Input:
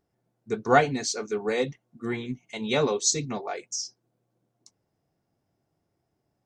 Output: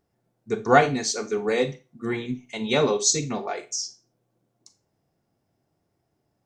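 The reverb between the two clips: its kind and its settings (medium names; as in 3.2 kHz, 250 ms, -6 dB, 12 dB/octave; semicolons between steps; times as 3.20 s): Schroeder reverb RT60 0.3 s, combs from 28 ms, DRR 10.5 dB; trim +2.5 dB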